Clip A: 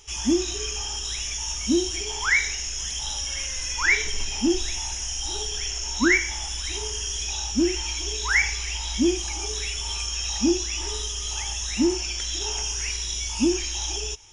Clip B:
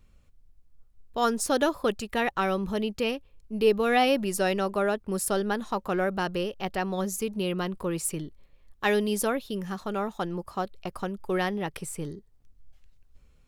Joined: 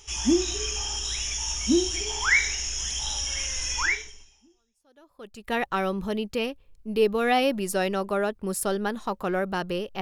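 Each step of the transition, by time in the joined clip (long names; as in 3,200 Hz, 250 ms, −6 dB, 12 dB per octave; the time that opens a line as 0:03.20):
clip A
0:04.67: continue with clip B from 0:01.32, crossfade 1.72 s exponential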